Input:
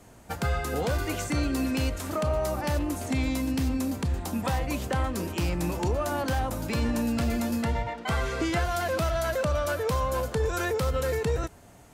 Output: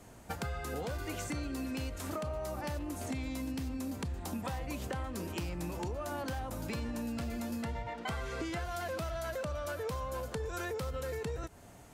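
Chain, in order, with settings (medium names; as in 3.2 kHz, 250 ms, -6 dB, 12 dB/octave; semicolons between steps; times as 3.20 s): compression 6:1, threshold -33 dBFS, peak gain reduction 10 dB; trim -2 dB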